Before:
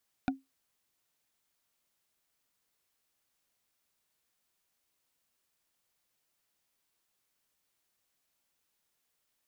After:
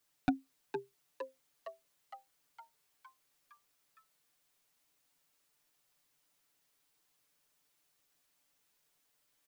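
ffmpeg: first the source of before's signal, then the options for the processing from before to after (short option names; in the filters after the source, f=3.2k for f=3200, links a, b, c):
-f lavfi -i "aevalsrc='0.0708*pow(10,-3*t/0.19)*sin(2*PI*268*t)+0.0501*pow(10,-3*t/0.056)*sin(2*PI*738.9*t)+0.0355*pow(10,-3*t/0.025)*sin(2*PI*1448.3*t)+0.0251*pow(10,-3*t/0.014)*sin(2*PI*2394*t)+0.0178*pow(10,-3*t/0.008)*sin(2*PI*3575.1*t)':d=0.45:s=44100"
-filter_complex "[0:a]aecho=1:1:6.8:0.78,asplit=9[a][b][c][d][e][f][g][h][i];[b]adelay=461,afreqshift=130,volume=-8dB[j];[c]adelay=922,afreqshift=260,volume=-12dB[k];[d]adelay=1383,afreqshift=390,volume=-16dB[l];[e]adelay=1844,afreqshift=520,volume=-20dB[m];[f]adelay=2305,afreqshift=650,volume=-24.1dB[n];[g]adelay=2766,afreqshift=780,volume=-28.1dB[o];[h]adelay=3227,afreqshift=910,volume=-32.1dB[p];[i]adelay=3688,afreqshift=1040,volume=-36.1dB[q];[a][j][k][l][m][n][o][p][q]amix=inputs=9:normalize=0"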